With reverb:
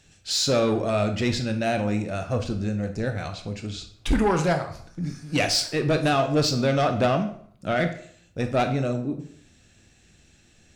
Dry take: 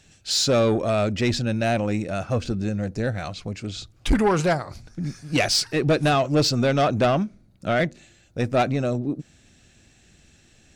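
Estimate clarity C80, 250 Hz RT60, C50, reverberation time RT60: 14.0 dB, 0.65 s, 10.0 dB, 0.60 s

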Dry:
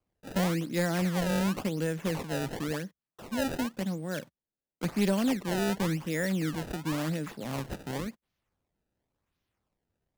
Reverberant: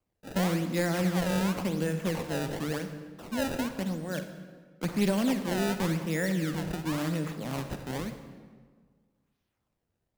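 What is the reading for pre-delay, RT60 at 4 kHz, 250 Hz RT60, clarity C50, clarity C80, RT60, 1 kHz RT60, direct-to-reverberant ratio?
38 ms, 1.1 s, 1.8 s, 8.5 dB, 10.0 dB, 1.6 s, 1.5 s, 8.0 dB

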